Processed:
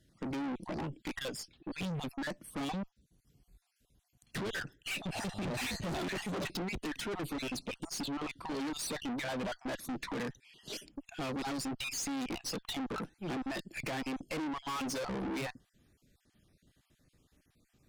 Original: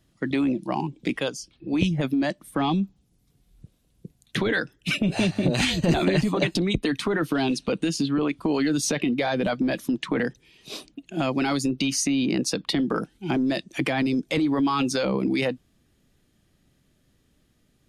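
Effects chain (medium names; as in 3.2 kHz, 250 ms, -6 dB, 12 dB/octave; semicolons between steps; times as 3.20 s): random holes in the spectrogram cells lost 34%; valve stage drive 35 dB, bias 0.55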